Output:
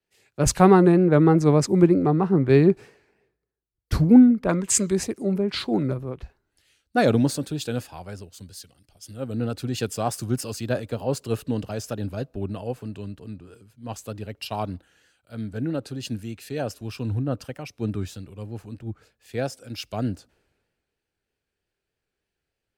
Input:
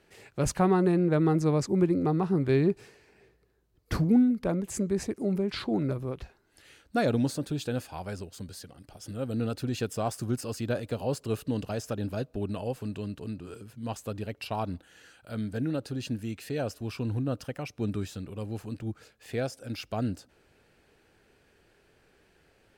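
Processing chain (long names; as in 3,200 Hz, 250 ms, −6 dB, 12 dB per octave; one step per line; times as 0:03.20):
pitch vibrato 3.2 Hz 52 cents
gain on a spectral selection 0:04.49–0:04.91, 910–9,200 Hz +8 dB
multiband upward and downward expander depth 70%
level +4 dB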